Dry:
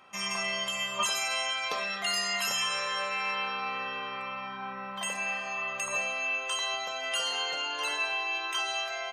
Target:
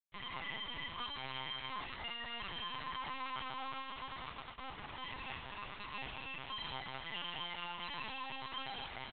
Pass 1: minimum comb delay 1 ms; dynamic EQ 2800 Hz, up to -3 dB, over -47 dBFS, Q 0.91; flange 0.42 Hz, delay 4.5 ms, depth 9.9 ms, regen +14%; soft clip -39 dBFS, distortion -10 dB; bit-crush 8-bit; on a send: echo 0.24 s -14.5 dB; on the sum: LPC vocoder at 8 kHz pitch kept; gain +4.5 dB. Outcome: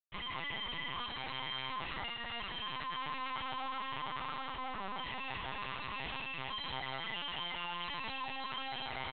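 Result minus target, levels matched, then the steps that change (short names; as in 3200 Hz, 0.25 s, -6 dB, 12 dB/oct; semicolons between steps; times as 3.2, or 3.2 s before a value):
soft clip: distortion -5 dB
change: soft clip -48 dBFS, distortion -5 dB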